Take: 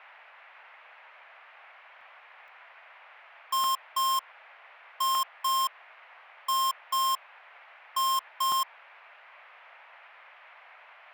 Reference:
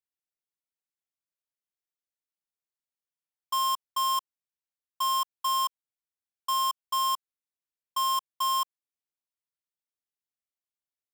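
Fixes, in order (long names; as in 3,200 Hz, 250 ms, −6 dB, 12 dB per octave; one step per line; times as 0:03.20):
repair the gap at 0:02.01/0:02.48/0:03.64/0:05.15/0:08.52, 1.9 ms
noise reduction from a noise print 30 dB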